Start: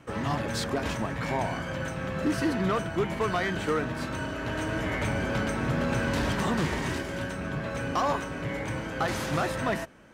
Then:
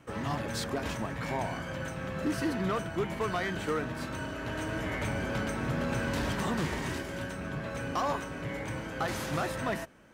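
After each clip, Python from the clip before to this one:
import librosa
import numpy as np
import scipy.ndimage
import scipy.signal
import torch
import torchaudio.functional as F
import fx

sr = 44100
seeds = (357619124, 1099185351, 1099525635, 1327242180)

y = fx.high_shelf(x, sr, hz=12000.0, db=7.0)
y = F.gain(torch.from_numpy(y), -4.0).numpy()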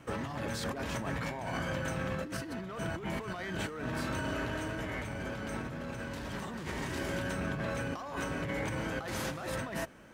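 y = fx.over_compress(x, sr, threshold_db=-37.0, ratio=-1.0)
y = fx.dmg_crackle(y, sr, seeds[0], per_s=98.0, level_db=-60.0)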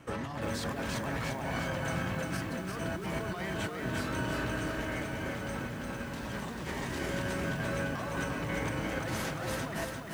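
y = fx.echo_crushed(x, sr, ms=347, feedback_pct=55, bits=9, wet_db=-3.5)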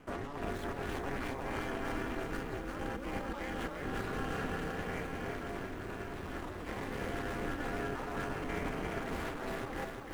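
y = scipy.signal.medfilt(x, 9)
y = y * np.sin(2.0 * np.pi * 140.0 * np.arange(len(y)) / sr)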